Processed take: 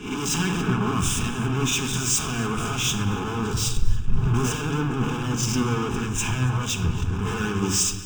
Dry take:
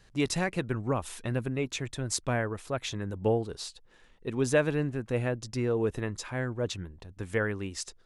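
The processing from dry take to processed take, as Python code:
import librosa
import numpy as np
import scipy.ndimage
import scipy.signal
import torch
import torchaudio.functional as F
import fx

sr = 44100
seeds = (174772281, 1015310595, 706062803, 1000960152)

y = fx.spec_swells(x, sr, rise_s=0.45)
y = fx.low_shelf_res(y, sr, hz=190.0, db=13.5, q=3.0, at=(3.53, 4.34))
y = fx.fixed_phaser(y, sr, hz=1300.0, stages=6, at=(6.03, 6.68))
y = fx.fuzz(y, sr, gain_db=49.0, gate_db=-58.0)
y = fx.fixed_phaser(y, sr, hz=2900.0, stages=8)
y = fx.echo_feedback(y, sr, ms=284, feedback_pct=58, wet_db=-13.5)
y = fx.room_shoebox(y, sr, seeds[0], volume_m3=3800.0, walls='mixed', distance_m=1.4)
y = fx.band_widen(y, sr, depth_pct=100)
y = F.gain(torch.from_numpy(y), -9.0).numpy()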